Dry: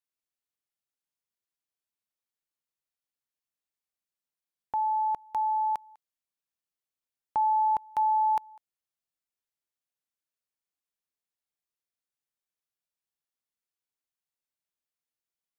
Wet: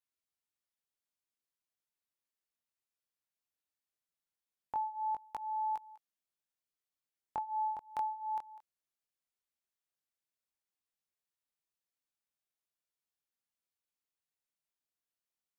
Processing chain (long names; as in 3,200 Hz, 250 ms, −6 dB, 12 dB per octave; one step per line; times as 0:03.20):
downward compressor, threshold −32 dBFS, peak gain reduction 8.5 dB
chorus effect 0.17 Hz, delay 18.5 ms, depth 7.1 ms